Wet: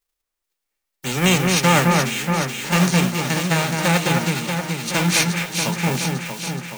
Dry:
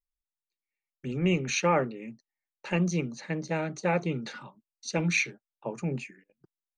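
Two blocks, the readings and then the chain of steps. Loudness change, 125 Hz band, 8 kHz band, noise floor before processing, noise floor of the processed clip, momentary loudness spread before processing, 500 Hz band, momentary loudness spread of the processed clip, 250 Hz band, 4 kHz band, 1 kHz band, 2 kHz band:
+10.5 dB, +12.0 dB, +15.5 dB, under -85 dBFS, -81 dBFS, 16 LU, +7.0 dB, 8 LU, +10.5 dB, +17.5 dB, +12.0 dB, +12.0 dB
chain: formants flattened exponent 0.3; echo whose repeats swap between lows and highs 212 ms, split 2.3 kHz, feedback 81%, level -3 dB; trim +8.5 dB

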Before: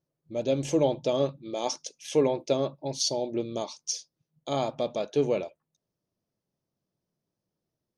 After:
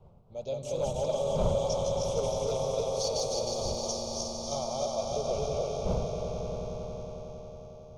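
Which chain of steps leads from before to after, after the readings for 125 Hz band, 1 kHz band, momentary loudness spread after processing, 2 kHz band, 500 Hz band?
+2.0 dB, 0.0 dB, 12 LU, -7.5 dB, -1.0 dB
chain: backward echo that repeats 156 ms, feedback 78%, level -0.5 dB; wind noise 280 Hz -30 dBFS; hard clipper -13.5 dBFS, distortion -17 dB; static phaser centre 730 Hz, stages 4; on a send: echo with a slow build-up 91 ms, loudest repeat 5, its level -11.5 dB; on the sum: trim -6.5 dB

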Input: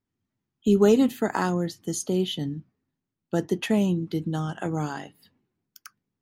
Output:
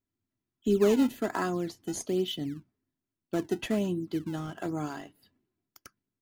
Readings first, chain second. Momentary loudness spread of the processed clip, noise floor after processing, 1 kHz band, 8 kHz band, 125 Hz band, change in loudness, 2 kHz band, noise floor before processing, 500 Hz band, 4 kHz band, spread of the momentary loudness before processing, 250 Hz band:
12 LU, under -85 dBFS, -5.5 dB, -6.0 dB, -8.5 dB, -5.0 dB, -5.0 dB, -85 dBFS, -4.5 dB, -4.0 dB, 12 LU, -5.5 dB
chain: band-stop 910 Hz, Q 17; comb 3 ms, depth 41%; in parallel at -10 dB: decimation with a swept rate 22×, swing 160% 1.2 Hz; on the sum: trim -7 dB

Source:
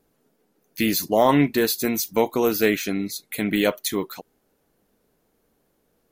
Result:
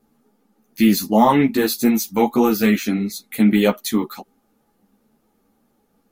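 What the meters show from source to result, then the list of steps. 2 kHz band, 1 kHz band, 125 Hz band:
+0.5 dB, +5.0 dB, +5.0 dB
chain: small resonant body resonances 230/830/1200 Hz, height 11 dB, ringing for 45 ms; three-phase chorus; trim +3.5 dB

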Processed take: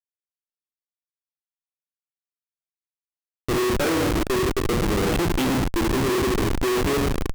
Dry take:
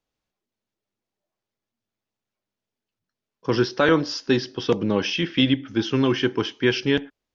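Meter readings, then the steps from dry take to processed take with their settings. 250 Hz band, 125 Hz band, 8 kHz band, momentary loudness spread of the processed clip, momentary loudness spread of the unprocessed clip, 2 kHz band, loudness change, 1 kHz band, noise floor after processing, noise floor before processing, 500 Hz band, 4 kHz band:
-1.0 dB, +2.0 dB, no reading, 2 LU, 5 LU, -2.0 dB, -0.5 dB, +4.0 dB, under -85 dBFS, under -85 dBFS, 0.0 dB, -4.0 dB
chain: dynamic bell 310 Hz, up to +5 dB, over -34 dBFS, Q 1.6; rotary cabinet horn 0.7 Hz; cabinet simulation 170–3200 Hz, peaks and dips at 260 Hz -7 dB, 380 Hz +4 dB, 880 Hz -9 dB, 1.7 kHz -3 dB; hard clipper -9.5 dBFS, distortion -26 dB; bucket-brigade echo 559 ms, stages 4096, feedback 77%, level -17.5 dB; Schroeder reverb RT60 1.2 s, combs from 31 ms, DRR 3 dB; Schmitt trigger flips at -23 dBFS; trim +1.5 dB

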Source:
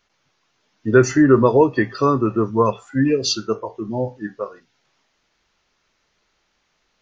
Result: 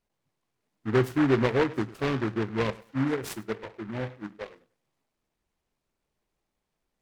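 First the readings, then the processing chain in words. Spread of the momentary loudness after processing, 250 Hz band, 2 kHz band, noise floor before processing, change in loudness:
16 LU, -9.5 dB, -7.0 dB, -69 dBFS, -10.0 dB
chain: FFT filter 140 Hz 0 dB, 1.1 kHz -6 dB, 1.7 kHz -20 dB, 2.7 kHz -10 dB; on a send: tape echo 101 ms, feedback 24%, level -18.5 dB, low-pass 3.1 kHz; on the sum: delay time shaken by noise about 1.2 kHz, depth 0.14 ms; trim -7.5 dB

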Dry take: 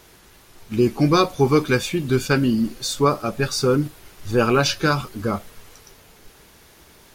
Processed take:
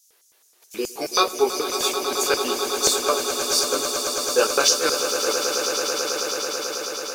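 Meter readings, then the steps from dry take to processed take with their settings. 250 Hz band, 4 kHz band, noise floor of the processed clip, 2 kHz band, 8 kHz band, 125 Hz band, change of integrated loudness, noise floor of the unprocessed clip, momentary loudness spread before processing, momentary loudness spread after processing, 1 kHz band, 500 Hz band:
-11.5 dB, +6.5 dB, -60 dBFS, -1.0 dB, +11.5 dB, -27.5 dB, -1.0 dB, -51 dBFS, 9 LU, 8 LU, 0.0 dB, -1.0 dB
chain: gate -41 dBFS, range -13 dB; tilt EQ +3 dB/octave; chorus 2.9 Hz, delay 18.5 ms, depth 2.2 ms; LFO high-pass square 4.7 Hz 450–6200 Hz; echo with a slow build-up 109 ms, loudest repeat 8, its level -11 dB

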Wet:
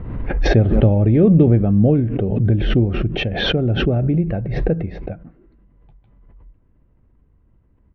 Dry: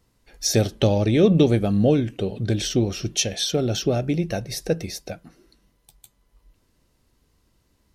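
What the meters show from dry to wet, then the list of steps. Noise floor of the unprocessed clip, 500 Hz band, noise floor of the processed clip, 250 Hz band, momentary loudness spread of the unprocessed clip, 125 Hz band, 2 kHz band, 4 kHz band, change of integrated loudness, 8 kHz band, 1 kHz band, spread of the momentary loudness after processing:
-66 dBFS, +2.0 dB, -57 dBFS, +5.0 dB, 10 LU, +8.0 dB, +7.5 dB, 0.0 dB, +5.0 dB, under -20 dB, +2.0 dB, 11 LU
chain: Bessel low-pass 1.5 kHz, order 6; bass shelf 250 Hz +11.5 dB; speakerphone echo 170 ms, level -29 dB; swell ahead of each attack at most 35 dB/s; trim -2 dB

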